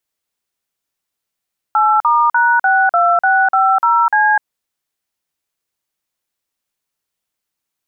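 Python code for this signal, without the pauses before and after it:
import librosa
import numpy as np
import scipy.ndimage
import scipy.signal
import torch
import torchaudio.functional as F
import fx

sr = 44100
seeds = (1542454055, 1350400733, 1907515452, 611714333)

y = fx.dtmf(sr, digits='8*#62650C', tone_ms=252, gap_ms=45, level_db=-12.0)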